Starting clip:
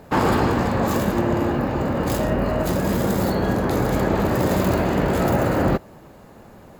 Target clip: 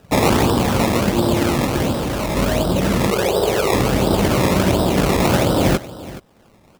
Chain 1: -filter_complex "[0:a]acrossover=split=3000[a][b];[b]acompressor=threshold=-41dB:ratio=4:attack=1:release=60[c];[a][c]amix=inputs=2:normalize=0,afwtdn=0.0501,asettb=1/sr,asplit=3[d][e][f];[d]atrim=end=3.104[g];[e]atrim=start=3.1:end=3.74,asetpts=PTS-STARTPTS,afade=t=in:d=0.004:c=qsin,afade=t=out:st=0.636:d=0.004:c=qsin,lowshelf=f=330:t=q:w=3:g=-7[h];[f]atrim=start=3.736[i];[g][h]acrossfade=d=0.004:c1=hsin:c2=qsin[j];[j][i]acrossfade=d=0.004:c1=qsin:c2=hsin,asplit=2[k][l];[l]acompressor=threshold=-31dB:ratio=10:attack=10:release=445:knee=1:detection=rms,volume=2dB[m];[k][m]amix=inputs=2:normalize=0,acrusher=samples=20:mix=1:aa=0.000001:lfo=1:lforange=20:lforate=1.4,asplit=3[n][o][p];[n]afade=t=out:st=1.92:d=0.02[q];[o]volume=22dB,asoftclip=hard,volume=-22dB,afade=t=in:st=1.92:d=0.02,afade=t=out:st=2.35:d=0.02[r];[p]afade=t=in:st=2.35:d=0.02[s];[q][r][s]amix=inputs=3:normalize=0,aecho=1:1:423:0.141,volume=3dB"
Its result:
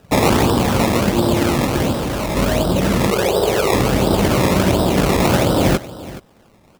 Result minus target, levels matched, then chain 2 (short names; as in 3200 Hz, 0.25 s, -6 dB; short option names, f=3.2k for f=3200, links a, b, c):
compressor: peak gain reduction -8.5 dB
-filter_complex "[0:a]acrossover=split=3000[a][b];[b]acompressor=threshold=-41dB:ratio=4:attack=1:release=60[c];[a][c]amix=inputs=2:normalize=0,afwtdn=0.0501,asettb=1/sr,asplit=3[d][e][f];[d]atrim=end=3.104[g];[e]atrim=start=3.1:end=3.74,asetpts=PTS-STARTPTS,afade=t=in:d=0.004:c=qsin,afade=t=out:st=0.636:d=0.004:c=qsin,lowshelf=f=330:t=q:w=3:g=-7[h];[f]atrim=start=3.736[i];[g][h]acrossfade=d=0.004:c1=hsin:c2=qsin[j];[j][i]acrossfade=d=0.004:c1=qsin:c2=hsin,asplit=2[k][l];[l]acompressor=threshold=-40.5dB:ratio=10:attack=10:release=445:knee=1:detection=rms,volume=2dB[m];[k][m]amix=inputs=2:normalize=0,acrusher=samples=20:mix=1:aa=0.000001:lfo=1:lforange=20:lforate=1.4,asplit=3[n][o][p];[n]afade=t=out:st=1.92:d=0.02[q];[o]volume=22dB,asoftclip=hard,volume=-22dB,afade=t=in:st=1.92:d=0.02,afade=t=out:st=2.35:d=0.02[r];[p]afade=t=in:st=2.35:d=0.02[s];[q][r][s]amix=inputs=3:normalize=0,aecho=1:1:423:0.141,volume=3dB"